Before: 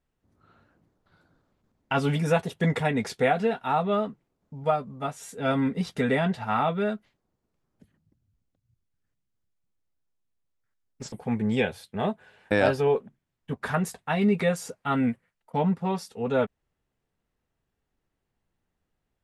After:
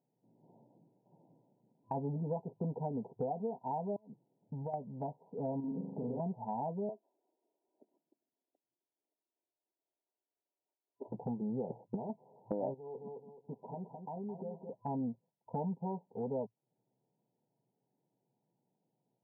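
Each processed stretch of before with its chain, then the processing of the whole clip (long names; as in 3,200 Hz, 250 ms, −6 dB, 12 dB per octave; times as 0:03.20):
0:03.96–0:04.74: downward compressor 3 to 1, threshold −36 dBFS + gate with flip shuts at −24 dBFS, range −24 dB
0:05.60–0:06.20: leveller curve on the samples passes 1 + downward compressor 3 to 1, threshold −33 dBFS + flutter between parallel walls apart 7 metres, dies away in 0.71 s
0:06.89–0:11.12: high-pass filter 350 Hz 24 dB per octave + comb filter 3 ms, depth 39%
0:11.70–0:12.10: leveller curve on the samples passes 2 + compressor whose output falls as the input rises −27 dBFS, ratio −0.5
0:12.74–0:14.73: low-shelf EQ 140 Hz −11 dB + downward compressor 3 to 1, threshold −42 dBFS + feedback echo at a low word length 214 ms, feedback 35%, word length 11 bits, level −8 dB
whole clip: brick-wall band-pass 110–1,000 Hz; downward compressor 3 to 1, threshold −40 dBFS; level +1 dB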